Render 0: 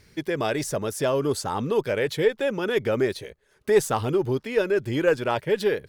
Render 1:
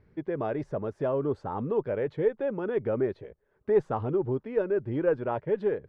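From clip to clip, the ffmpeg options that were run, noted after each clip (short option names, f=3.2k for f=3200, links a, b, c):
-af "lowpass=1.1k,volume=-4dB"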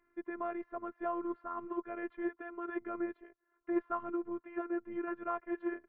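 -af "highpass=250,equalizer=f=260:t=q:w=4:g=-6,equalizer=f=370:t=q:w=4:g=-8,equalizer=f=550:t=q:w=4:g=-8,equalizer=f=810:t=q:w=4:g=-8,equalizer=f=1.2k:t=q:w=4:g=8,lowpass=f=2.3k:w=0.5412,lowpass=f=2.3k:w=1.3066,afftfilt=real='hypot(re,im)*cos(PI*b)':imag='0':win_size=512:overlap=0.75,volume=1dB"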